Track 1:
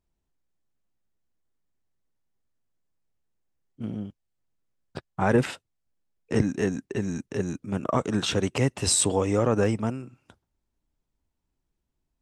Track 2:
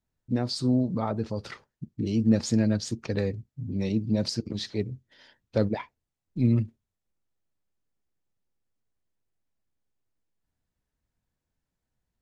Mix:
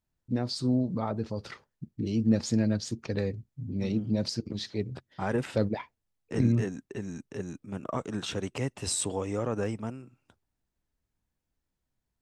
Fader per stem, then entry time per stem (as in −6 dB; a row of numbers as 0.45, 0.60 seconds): −8.0, −2.5 decibels; 0.00, 0.00 seconds